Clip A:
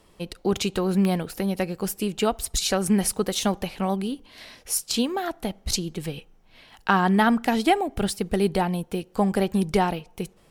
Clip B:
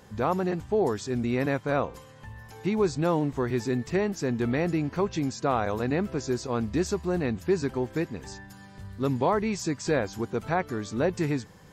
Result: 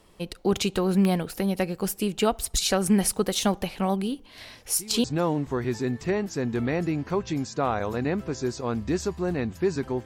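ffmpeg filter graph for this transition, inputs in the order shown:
ffmpeg -i cue0.wav -i cue1.wav -filter_complex "[1:a]asplit=2[link_01][link_02];[0:a]apad=whole_dur=10.05,atrim=end=10.05,atrim=end=5.042[link_03];[link_02]atrim=start=2.898:end=7.91[link_04];[link_01]atrim=start=2.21:end=2.9,asetpts=PTS-STARTPTS,volume=-16.5dB,afade=type=in:duration=0.004:curve=hsin,afade=type=out:start_time=0.686:duration=0.004:curve=hsin,adelay=4350[link_05];[link_03][link_04]acrossfade=duration=0.004:curve1=hsin:curve2=hsin[link_06];[link_06][link_05]amix=inputs=2:normalize=0" out.wav

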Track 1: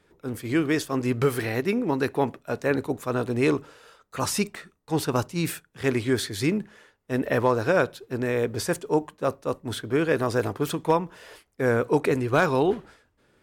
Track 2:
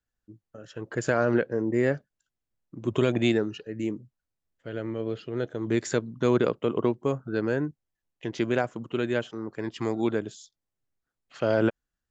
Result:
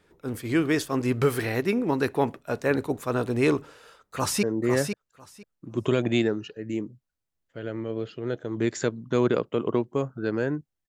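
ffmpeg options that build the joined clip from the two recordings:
ffmpeg -i cue0.wav -i cue1.wav -filter_complex "[0:a]apad=whole_dur=10.88,atrim=end=10.88,atrim=end=4.432[link_01];[1:a]atrim=start=1.528:end=7.98[link_02];[link_01][link_02]acrossfade=duration=0.004:curve1=hsin:curve2=hsin,asplit=2[link_03][link_04];[link_04]afade=type=in:start_time=3.96:duration=0.01,afade=type=out:start_time=4.43:duration=0.01,aecho=0:1:500|1000|1500:0.473151|0.0709727|0.0106459[link_05];[link_03][link_05]amix=inputs=2:normalize=0" out.wav

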